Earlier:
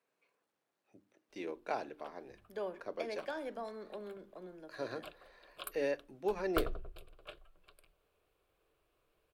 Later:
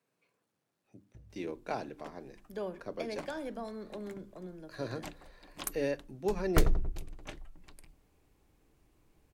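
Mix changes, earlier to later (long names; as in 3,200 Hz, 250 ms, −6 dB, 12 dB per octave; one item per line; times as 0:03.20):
first sound: entry −1.15 s
second sound: remove phaser with its sweep stopped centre 1,300 Hz, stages 8
master: add bass and treble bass +14 dB, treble +5 dB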